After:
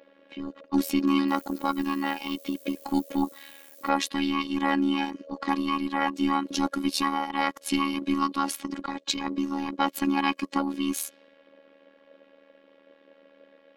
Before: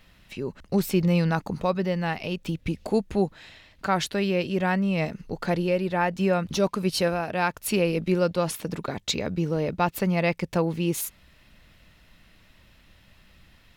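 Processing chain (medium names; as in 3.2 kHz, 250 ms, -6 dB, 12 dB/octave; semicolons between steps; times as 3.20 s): every band turned upside down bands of 500 Hz; high-pass 180 Hz 12 dB/octave; level-controlled noise filter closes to 1.9 kHz, open at -24 dBFS; 1.27–3.88 s: added noise violet -51 dBFS; robot voice 277 Hz; AM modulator 78 Hz, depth 55%; trim +5 dB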